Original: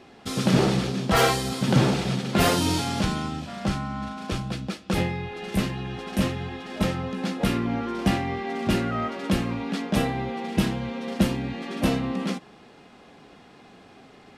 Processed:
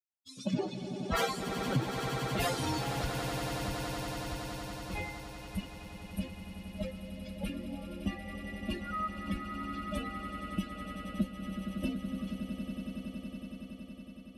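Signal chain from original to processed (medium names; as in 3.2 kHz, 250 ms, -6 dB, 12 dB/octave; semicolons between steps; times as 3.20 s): expander on every frequency bin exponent 3; on a send: echo with a slow build-up 93 ms, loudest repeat 8, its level -14 dB; on the sum: compression 2:1, threshold -32 dBFS, peak gain reduction 8.5 dB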